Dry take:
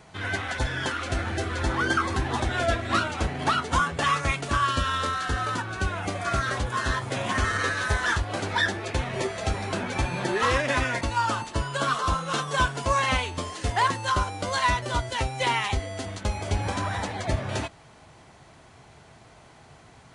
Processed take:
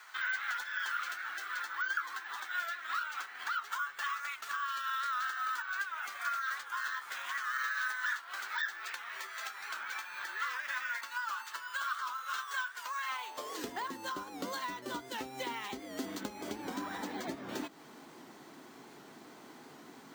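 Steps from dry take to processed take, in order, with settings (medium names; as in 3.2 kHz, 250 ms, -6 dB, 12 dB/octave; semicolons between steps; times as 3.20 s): fifteen-band graphic EQ 100 Hz -8 dB, 630 Hz -7 dB, 2.5 kHz -4 dB; compression 6:1, threshold -38 dBFS, peak gain reduction 17 dB; high-pass sweep 1.4 kHz -> 270 Hz, 13.03–13.72 s; careless resampling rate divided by 2×, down filtered, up hold; warped record 78 rpm, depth 100 cents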